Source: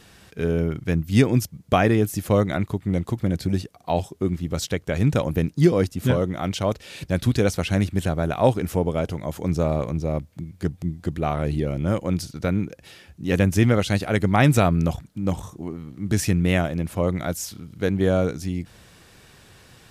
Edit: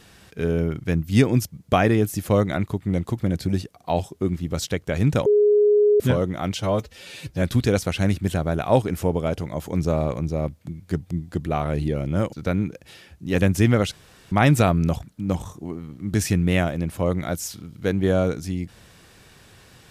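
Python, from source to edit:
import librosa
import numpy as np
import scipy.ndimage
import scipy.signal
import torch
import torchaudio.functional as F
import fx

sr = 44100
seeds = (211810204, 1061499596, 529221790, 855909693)

y = fx.edit(x, sr, fx.bleep(start_s=5.26, length_s=0.74, hz=416.0, db=-13.0),
    fx.stretch_span(start_s=6.57, length_s=0.57, factor=1.5),
    fx.cut(start_s=12.04, length_s=0.26),
    fx.room_tone_fill(start_s=13.89, length_s=0.4), tone=tone)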